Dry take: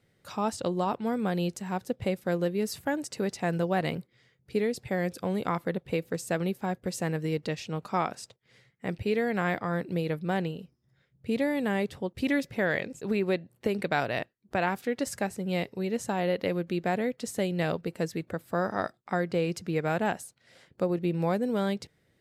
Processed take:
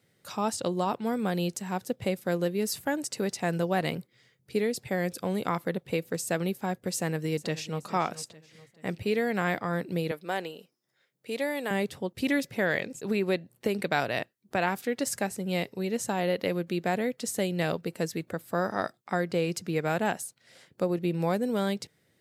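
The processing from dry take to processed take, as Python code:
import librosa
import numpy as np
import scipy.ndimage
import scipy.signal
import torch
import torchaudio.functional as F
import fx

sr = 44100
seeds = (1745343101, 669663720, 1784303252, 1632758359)

y = fx.echo_throw(x, sr, start_s=6.94, length_s=0.85, ms=430, feedback_pct=45, wet_db=-16.0)
y = fx.highpass(y, sr, hz=400.0, slope=12, at=(10.11, 11.71))
y = scipy.signal.sosfilt(scipy.signal.butter(2, 100.0, 'highpass', fs=sr, output='sos'), y)
y = fx.high_shelf(y, sr, hz=4700.0, db=7.5)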